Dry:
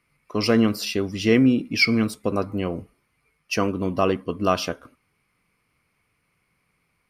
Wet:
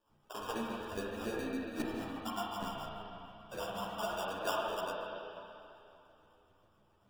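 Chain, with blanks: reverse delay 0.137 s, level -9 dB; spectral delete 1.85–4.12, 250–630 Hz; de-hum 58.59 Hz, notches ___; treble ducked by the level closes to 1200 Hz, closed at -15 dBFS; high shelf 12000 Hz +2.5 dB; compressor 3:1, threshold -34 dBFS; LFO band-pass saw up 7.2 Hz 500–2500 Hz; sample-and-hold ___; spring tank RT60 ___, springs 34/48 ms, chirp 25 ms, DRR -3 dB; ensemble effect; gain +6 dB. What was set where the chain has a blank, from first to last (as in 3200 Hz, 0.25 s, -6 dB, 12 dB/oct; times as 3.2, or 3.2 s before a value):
6, 21×, 2.9 s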